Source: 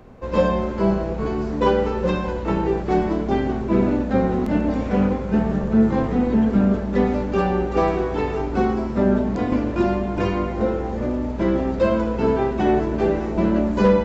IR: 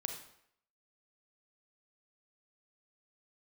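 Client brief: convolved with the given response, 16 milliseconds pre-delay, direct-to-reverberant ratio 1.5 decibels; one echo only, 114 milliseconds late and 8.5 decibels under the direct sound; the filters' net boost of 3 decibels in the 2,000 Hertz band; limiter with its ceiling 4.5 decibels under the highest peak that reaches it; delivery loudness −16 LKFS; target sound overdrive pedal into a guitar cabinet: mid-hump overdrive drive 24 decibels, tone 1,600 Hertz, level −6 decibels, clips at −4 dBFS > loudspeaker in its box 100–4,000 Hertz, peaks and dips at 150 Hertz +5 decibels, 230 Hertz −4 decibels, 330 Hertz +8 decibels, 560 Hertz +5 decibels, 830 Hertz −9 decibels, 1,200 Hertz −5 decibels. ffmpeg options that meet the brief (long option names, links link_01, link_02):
-filter_complex "[0:a]equalizer=frequency=2000:width_type=o:gain=5,alimiter=limit=-11.5dB:level=0:latency=1,aecho=1:1:114:0.376,asplit=2[link_01][link_02];[1:a]atrim=start_sample=2205,adelay=16[link_03];[link_02][link_03]afir=irnorm=-1:irlink=0,volume=-1.5dB[link_04];[link_01][link_04]amix=inputs=2:normalize=0,asplit=2[link_05][link_06];[link_06]highpass=frequency=720:poles=1,volume=24dB,asoftclip=type=tanh:threshold=-4dB[link_07];[link_05][link_07]amix=inputs=2:normalize=0,lowpass=frequency=1600:poles=1,volume=-6dB,highpass=100,equalizer=frequency=150:width_type=q:width=4:gain=5,equalizer=frequency=230:width_type=q:width=4:gain=-4,equalizer=frequency=330:width_type=q:width=4:gain=8,equalizer=frequency=560:width_type=q:width=4:gain=5,equalizer=frequency=830:width_type=q:width=4:gain=-9,equalizer=frequency=1200:width_type=q:width=4:gain=-5,lowpass=frequency=4000:width=0.5412,lowpass=frequency=4000:width=1.3066,volume=-4.5dB"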